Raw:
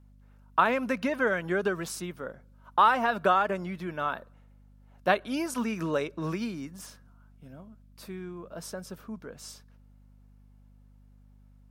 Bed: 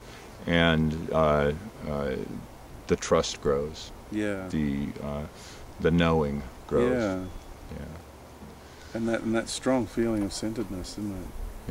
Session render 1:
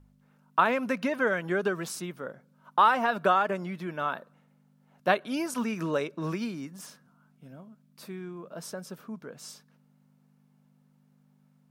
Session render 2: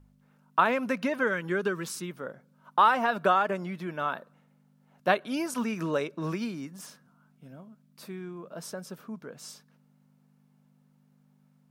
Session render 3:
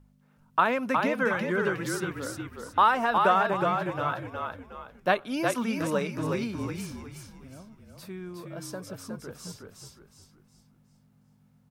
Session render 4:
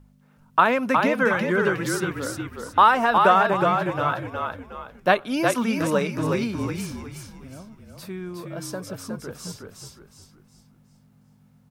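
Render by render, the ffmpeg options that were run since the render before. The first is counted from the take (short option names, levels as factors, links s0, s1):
-af "bandreject=f=50:t=h:w=4,bandreject=f=100:t=h:w=4"
-filter_complex "[0:a]asettb=1/sr,asplit=3[s0][s1][s2];[s0]atrim=end=1.234[s3];[s1]atrim=start=1.23:end=2.11,asetpts=PTS-STARTPTS,afade=t=in:d=0.004:c=qsin,afade=t=out:st=0.876:d=0.004:c=qsin,equalizer=f=690:w=4.6:g=-14[s4];[s2]atrim=start=2.106[s5];[s3][s4]acrossfade=d=0.004:c1=hsin:c2=qsin[s6];[s6][s5]acrossfade=d=0.004:c1=qsin:c2=hsin"
-filter_complex "[0:a]asplit=6[s0][s1][s2][s3][s4][s5];[s1]adelay=364,afreqshift=-42,volume=0.631[s6];[s2]adelay=728,afreqshift=-84,volume=0.226[s7];[s3]adelay=1092,afreqshift=-126,volume=0.0822[s8];[s4]adelay=1456,afreqshift=-168,volume=0.0295[s9];[s5]adelay=1820,afreqshift=-210,volume=0.0106[s10];[s0][s6][s7][s8][s9][s10]amix=inputs=6:normalize=0"
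-af "volume=1.88"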